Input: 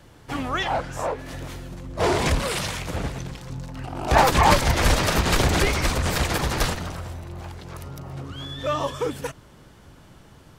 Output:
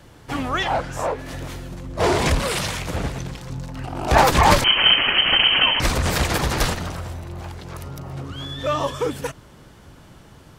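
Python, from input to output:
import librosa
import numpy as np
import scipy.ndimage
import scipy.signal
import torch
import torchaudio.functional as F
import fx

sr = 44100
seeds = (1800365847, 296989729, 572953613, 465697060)

y = fx.diode_clip(x, sr, knee_db=-5.5)
y = fx.freq_invert(y, sr, carrier_hz=3100, at=(4.64, 5.8))
y = y * librosa.db_to_amplitude(3.0)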